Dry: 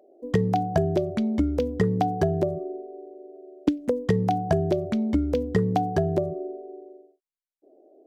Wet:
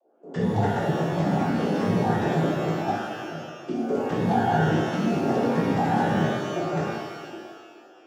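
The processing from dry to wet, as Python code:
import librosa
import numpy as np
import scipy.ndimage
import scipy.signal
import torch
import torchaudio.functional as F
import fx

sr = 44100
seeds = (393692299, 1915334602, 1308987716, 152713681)

y = fx.reverse_delay(x, sr, ms=490, wet_db=-3.0)
y = fx.level_steps(y, sr, step_db=13)
y = fx.noise_vocoder(y, sr, seeds[0], bands=16)
y = fx.rev_shimmer(y, sr, seeds[1], rt60_s=1.3, semitones=12, shimmer_db=-8, drr_db=-7.5)
y = F.gain(torch.from_numpy(y), -4.5).numpy()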